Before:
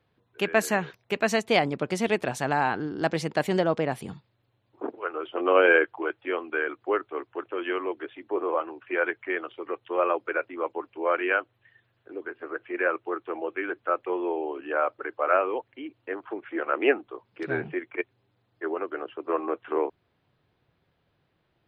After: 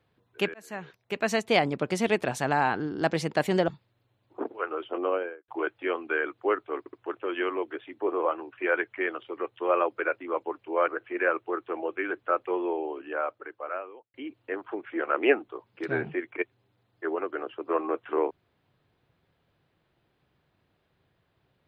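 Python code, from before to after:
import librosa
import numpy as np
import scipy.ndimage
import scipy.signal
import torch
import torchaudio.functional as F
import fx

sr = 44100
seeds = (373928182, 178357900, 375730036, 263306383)

y = fx.studio_fade_out(x, sr, start_s=5.14, length_s=0.77)
y = fx.edit(y, sr, fx.fade_in_span(start_s=0.54, length_s=1.36, curve='qsin'),
    fx.cut(start_s=3.68, length_s=0.43),
    fx.stutter(start_s=7.22, slice_s=0.07, count=3),
    fx.cut(start_s=11.17, length_s=1.3),
    fx.fade_out_span(start_s=14.15, length_s=1.58), tone=tone)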